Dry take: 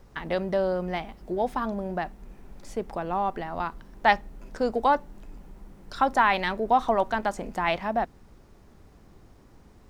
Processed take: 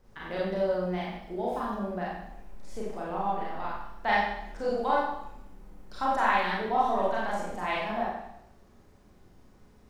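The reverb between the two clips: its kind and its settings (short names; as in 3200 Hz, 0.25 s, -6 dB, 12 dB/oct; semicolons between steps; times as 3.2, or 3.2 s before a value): Schroeder reverb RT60 0.81 s, combs from 30 ms, DRR -6.5 dB; gain -10.5 dB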